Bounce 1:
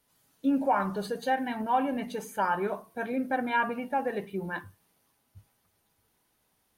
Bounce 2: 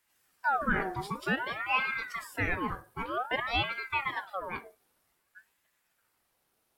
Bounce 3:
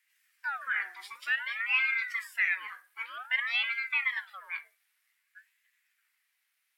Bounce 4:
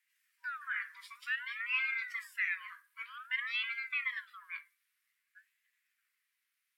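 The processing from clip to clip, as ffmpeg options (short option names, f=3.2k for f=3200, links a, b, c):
-af "aeval=exprs='val(0)*sin(2*PI*1200*n/s+1200*0.55/0.53*sin(2*PI*0.53*n/s))':c=same"
-af "highpass=f=2k:t=q:w=3.1,volume=-3dB"
-af "afftfilt=real='re*(1-between(b*sr/4096,190,960))':imag='im*(1-between(b*sr/4096,190,960))':win_size=4096:overlap=0.75,volume=-6dB"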